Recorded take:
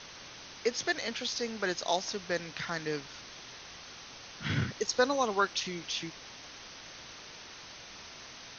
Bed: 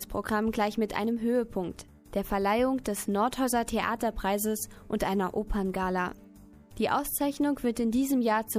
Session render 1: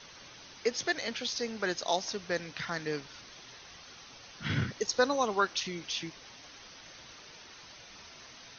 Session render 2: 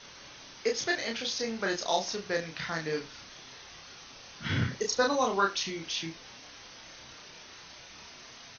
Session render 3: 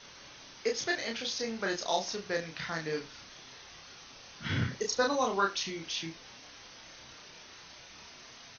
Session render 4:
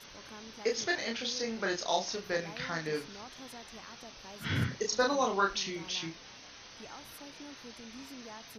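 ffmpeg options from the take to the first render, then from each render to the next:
-af "afftdn=nr=6:nf=-49"
-filter_complex "[0:a]asplit=2[a][b];[b]adelay=31,volume=-3dB[c];[a][c]amix=inputs=2:normalize=0,aecho=1:1:70:0.119"
-af "volume=-2dB"
-filter_complex "[1:a]volume=-22.5dB[a];[0:a][a]amix=inputs=2:normalize=0"

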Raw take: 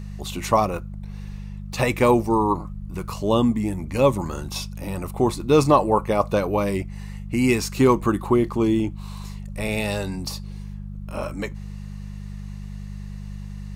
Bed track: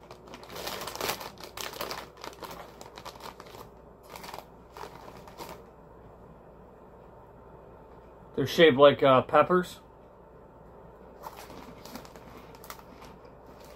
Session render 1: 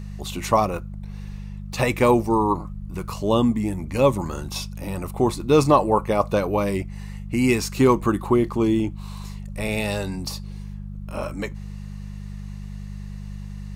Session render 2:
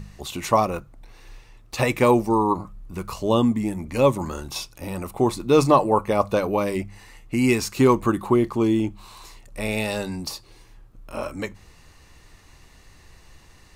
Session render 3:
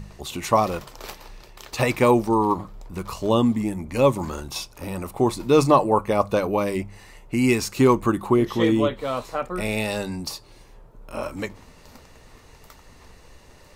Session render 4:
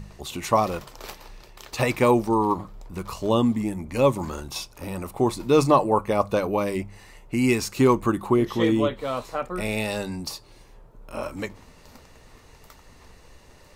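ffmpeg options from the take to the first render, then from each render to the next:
-af anull
-af "bandreject=f=50:t=h:w=4,bandreject=f=100:t=h:w=4,bandreject=f=150:t=h:w=4,bandreject=f=200:t=h:w=4"
-filter_complex "[1:a]volume=-6.5dB[a];[0:a][a]amix=inputs=2:normalize=0"
-af "volume=-1.5dB"

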